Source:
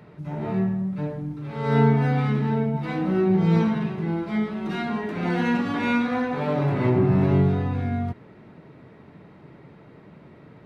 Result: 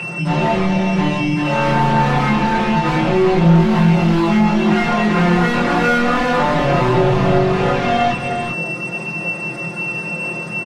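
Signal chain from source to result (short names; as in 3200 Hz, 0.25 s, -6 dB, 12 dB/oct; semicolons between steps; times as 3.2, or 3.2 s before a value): air absorption 370 m; whine 2700 Hz -40 dBFS; overdrive pedal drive 34 dB, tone 1400 Hz, clips at -8 dBFS; comb 5.7 ms, depth 88%; 3.61–4.28 hard clip -13 dBFS, distortion -20 dB; echo 0.389 s -7 dB; chorus voices 6, 0.52 Hz, delay 24 ms, depth 1 ms; compressor 1.5:1, threshold -19 dBFS, peak gain reduction 5 dB; gain +3.5 dB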